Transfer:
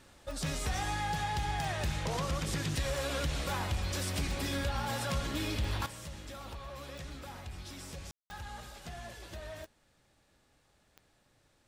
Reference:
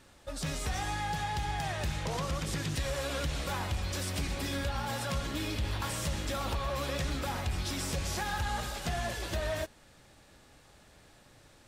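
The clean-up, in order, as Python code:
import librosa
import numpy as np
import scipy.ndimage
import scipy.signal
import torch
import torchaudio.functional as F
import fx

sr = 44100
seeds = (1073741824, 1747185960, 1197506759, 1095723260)

y = fx.fix_declick_ar(x, sr, threshold=10.0)
y = fx.fix_ambience(y, sr, seeds[0], print_start_s=11.16, print_end_s=11.66, start_s=8.11, end_s=8.3)
y = fx.fix_level(y, sr, at_s=5.86, step_db=11.0)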